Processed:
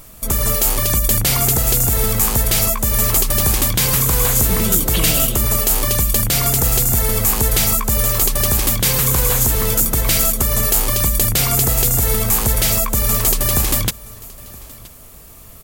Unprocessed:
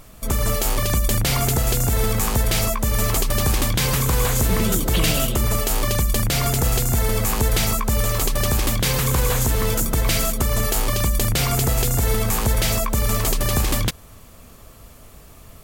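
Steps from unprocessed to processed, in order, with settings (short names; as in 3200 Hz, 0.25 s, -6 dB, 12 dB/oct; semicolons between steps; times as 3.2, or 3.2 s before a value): high shelf 7400 Hz +11 dB; on a send: echo 0.972 s -22 dB; on the sum: gain +1 dB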